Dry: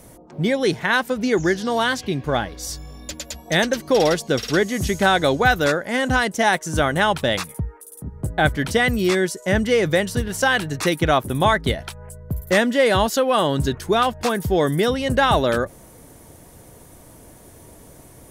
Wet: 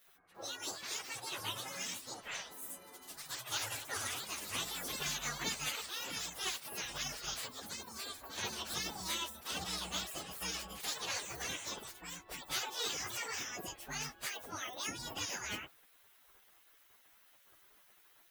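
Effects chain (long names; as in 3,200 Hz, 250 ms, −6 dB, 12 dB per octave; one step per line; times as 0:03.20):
phase-vocoder pitch shift without resampling +10 semitones
gate on every frequency bin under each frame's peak −15 dB weak
delay with pitch and tempo change per echo 345 ms, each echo +3 semitones, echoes 2, each echo −6 dB
level −7.5 dB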